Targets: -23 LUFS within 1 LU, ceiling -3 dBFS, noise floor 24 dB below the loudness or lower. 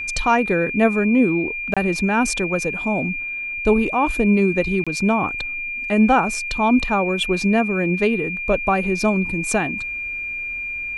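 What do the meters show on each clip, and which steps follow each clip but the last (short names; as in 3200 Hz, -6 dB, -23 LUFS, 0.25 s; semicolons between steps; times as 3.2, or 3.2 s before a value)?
dropouts 2; longest dropout 26 ms; steady tone 2400 Hz; tone level -25 dBFS; loudness -20.0 LUFS; peak -4.0 dBFS; loudness target -23.0 LUFS
-> interpolate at 1.74/4.84, 26 ms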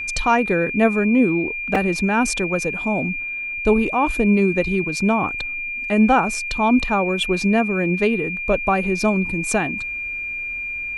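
dropouts 0; steady tone 2400 Hz; tone level -25 dBFS
-> notch 2400 Hz, Q 30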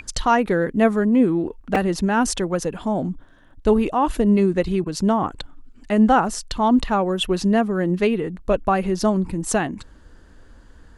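steady tone none; loudness -20.5 LUFS; peak -5.0 dBFS; loudness target -23.0 LUFS
-> gain -2.5 dB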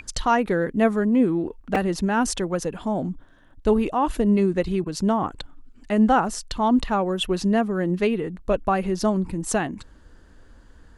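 loudness -23.0 LUFS; peak -7.5 dBFS; noise floor -51 dBFS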